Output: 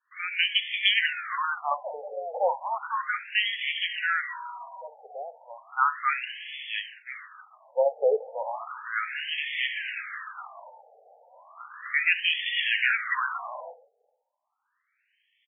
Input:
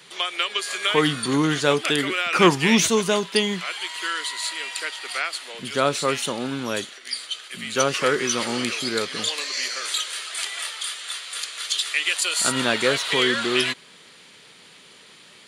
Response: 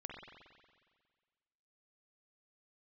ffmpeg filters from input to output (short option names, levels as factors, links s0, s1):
-filter_complex "[0:a]highpass=350,asplit=2[s0][s1];[s1]adelay=484,volume=0.0631,highshelf=f=4000:g=-10.9[s2];[s0][s2]amix=inputs=2:normalize=0,agate=range=0.0224:threshold=0.0178:ratio=3:detection=peak,asplit=2[s3][s4];[1:a]atrim=start_sample=2205,atrim=end_sample=3969[s5];[s4][s5]afir=irnorm=-1:irlink=0,volume=0.668[s6];[s3][s6]amix=inputs=2:normalize=0,afftfilt=real='re*between(b*sr/1024,600*pow(2500/600,0.5+0.5*sin(2*PI*0.34*pts/sr))/1.41,600*pow(2500/600,0.5+0.5*sin(2*PI*0.34*pts/sr))*1.41)':imag='im*between(b*sr/1024,600*pow(2500/600,0.5+0.5*sin(2*PI*0.34*pts/sr))/1.41,600*pow(2500/600,0.5+0.5*sin(2*PI*0.34*pts/sr))*1.41)':win_size=1024:overlap=0.75"